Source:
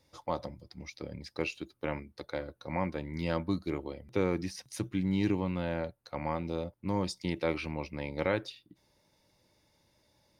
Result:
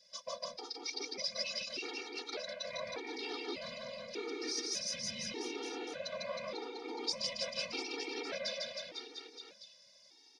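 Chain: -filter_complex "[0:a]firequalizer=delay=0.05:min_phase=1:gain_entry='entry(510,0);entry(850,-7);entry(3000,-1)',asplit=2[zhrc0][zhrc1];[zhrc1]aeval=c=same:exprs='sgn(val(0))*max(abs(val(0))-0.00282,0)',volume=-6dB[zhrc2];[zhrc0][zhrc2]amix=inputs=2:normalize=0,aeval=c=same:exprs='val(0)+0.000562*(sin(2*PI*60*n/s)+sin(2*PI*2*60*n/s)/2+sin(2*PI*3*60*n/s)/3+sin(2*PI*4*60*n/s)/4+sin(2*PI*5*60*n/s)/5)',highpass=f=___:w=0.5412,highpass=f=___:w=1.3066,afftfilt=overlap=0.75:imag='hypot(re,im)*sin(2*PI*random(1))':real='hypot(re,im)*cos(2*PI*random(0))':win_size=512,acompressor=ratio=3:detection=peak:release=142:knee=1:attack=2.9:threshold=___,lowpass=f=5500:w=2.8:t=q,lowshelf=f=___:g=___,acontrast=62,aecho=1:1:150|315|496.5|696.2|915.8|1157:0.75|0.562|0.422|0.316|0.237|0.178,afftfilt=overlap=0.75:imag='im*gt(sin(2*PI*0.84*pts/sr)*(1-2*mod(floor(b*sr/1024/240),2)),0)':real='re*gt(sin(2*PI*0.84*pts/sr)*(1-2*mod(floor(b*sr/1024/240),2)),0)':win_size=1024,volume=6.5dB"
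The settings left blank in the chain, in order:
320, 320, -49dB, 480, -10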